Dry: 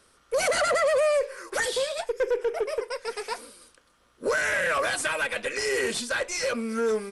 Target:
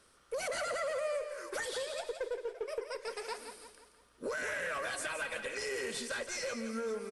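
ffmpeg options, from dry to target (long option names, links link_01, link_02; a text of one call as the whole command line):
ffmpeg -i in.wav -filter_complex "[0:a]asettb=1/sr,asplit=3[link_01][link_02][link_03];[link_01]atrim=end=2.134[link_04];[link_02]atrim=start=2.13:end=2.68,asetpts=PTS-STARTPTS,afade=type=in:duration=0.004:curve=qsin,afade=type=out:start_time=0.546:duration=0.004:curve=qsin,agate=range=-15dB:threshold=-27dB:ratio=16:detection=peak[link_05];[link_03]atrim=start=2.676[link_06];[link_04][link_05]acrossfade=duration=0.004:curve1=hsin:curve2=qsin[link_07];[link_07][link_06]acrossfade=duration=0.004:curve1=qsin:curve2=hsin,acompressor=threshold=-34dB:ratio=2.5,aecho=1:1:170|340|510|680|850:0.355|0.163|0.0751|0.0345|0.0159,volume=-4.5dB" out.wav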